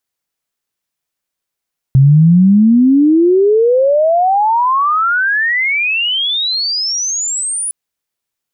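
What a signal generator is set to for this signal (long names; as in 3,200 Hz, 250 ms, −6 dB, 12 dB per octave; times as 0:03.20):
glide logarithmic 130 Hz → 10,000 Hz −3.5 dBFS → −16 dBFS 5.76 s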